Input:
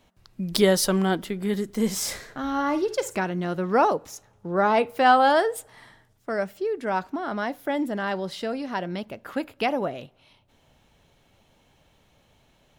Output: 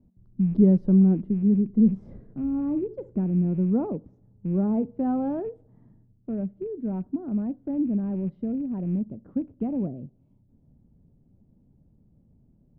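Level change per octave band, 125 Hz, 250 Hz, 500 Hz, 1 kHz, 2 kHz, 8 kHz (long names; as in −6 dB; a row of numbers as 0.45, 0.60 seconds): +7.5 dB, +6.0 dB, −8.0 dB, −19.5 dB, below −30 dB, below −40 dB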